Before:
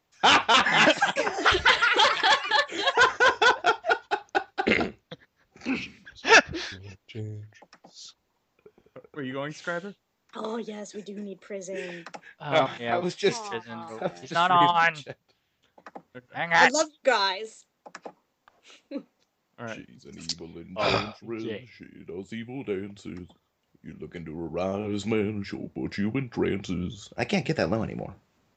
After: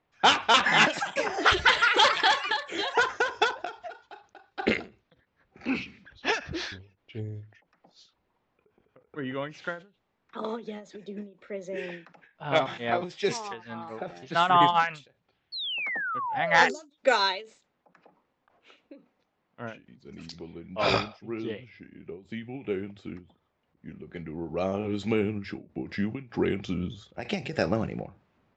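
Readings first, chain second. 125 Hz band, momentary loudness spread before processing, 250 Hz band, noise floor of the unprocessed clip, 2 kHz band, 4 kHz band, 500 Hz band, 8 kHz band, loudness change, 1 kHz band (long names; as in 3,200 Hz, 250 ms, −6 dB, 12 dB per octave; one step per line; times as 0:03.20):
−1.5 dB, 21 LU, −2.0 dB, −75 dBFS, −3.0 dB, −1.5 dB, −2.5 dB, −5.0 dB, −2.0 dB, −2.0 dB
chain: sound drawn into the spectrogram fall, 0:15.52–0:16.90, 270–4,500 Hz −31 dBFS
low-pass that shuts in the quiet parts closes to 2,600 Hz, open at −17.5 dBFS
every ending faded ahead of time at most 160 dB per second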